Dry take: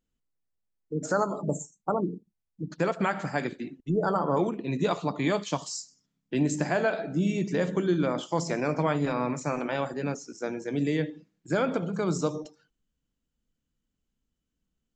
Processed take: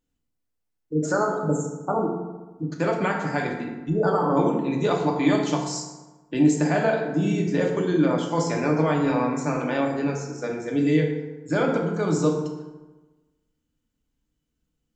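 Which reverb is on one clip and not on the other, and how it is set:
feedback delay network reverb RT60 1.2 s, low-frequency decay 1.05×, high-frequency decay 0.55×, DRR 0 dB
level +1 dB

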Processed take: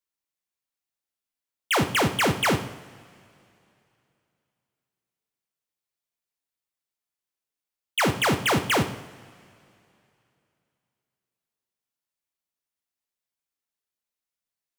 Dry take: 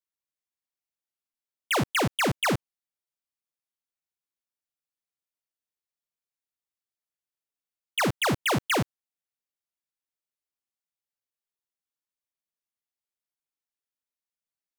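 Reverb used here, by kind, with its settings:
coupled-rooms reverb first 0.71 s, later 2.9 s, from −18 dB, DRR 6.5 dB
level +2 dB

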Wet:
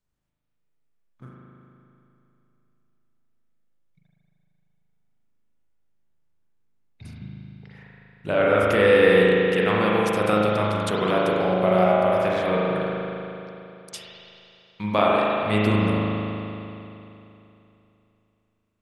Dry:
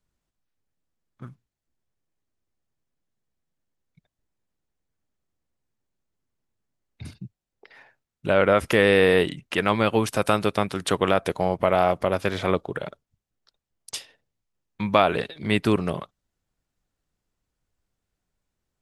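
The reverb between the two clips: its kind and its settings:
spring reverb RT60 3 s, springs 38 ms, chirp 70 ms, DRR −5 dB
level −5 dB

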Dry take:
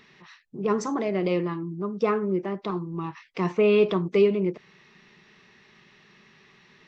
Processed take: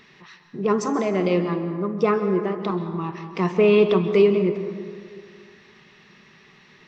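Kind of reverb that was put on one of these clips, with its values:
dense smooth reverb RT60 2 s, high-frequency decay 0.45×, pre-delay 120 ms, DRR 8.5 dB
level +3.5 dB

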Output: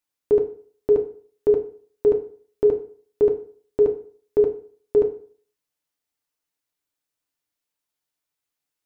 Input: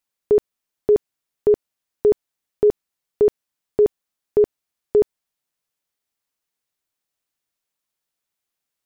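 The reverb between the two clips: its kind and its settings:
feedback delay network reverb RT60 0.47 s, low-frequency decay 0.95×, high-frequency decay 0.8×, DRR 3.5 dB
level −3.5 dB

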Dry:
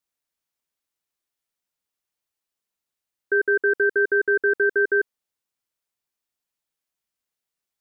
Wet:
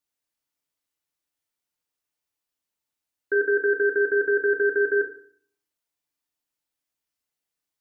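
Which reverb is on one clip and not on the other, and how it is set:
feedback delay network reverb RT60 0.53 s, low-frequency decay 1.3×, high-frequency decay 1×, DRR 3.5 dB
level −2 dB

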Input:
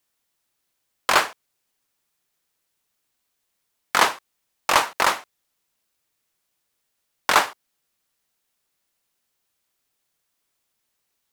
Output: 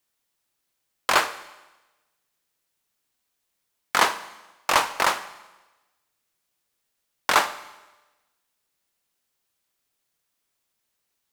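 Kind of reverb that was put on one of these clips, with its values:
four-comb reverb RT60 1.1 s, combs from 32 ms, DRR 13.5 dB
level −2 dB

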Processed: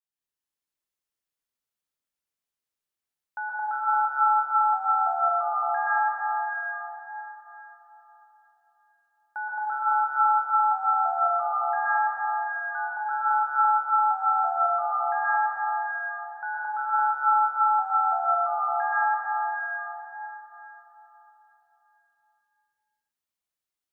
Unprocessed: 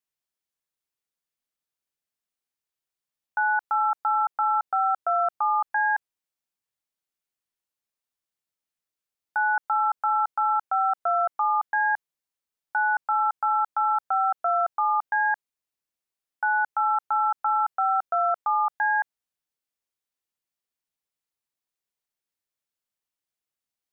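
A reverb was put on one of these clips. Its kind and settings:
dense smooth reverb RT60 4.1 s, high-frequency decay 0.9×, pre-delay 110 ms, DRR −8 dB
level −9 dB

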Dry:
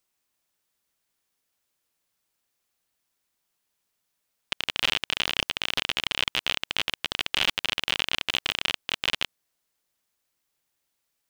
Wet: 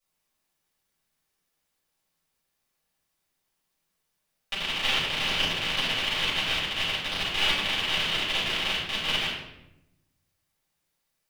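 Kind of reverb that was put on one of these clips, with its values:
rectangular room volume 290 cubic metres, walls mixed, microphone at 6.2 metres
level −13 dB

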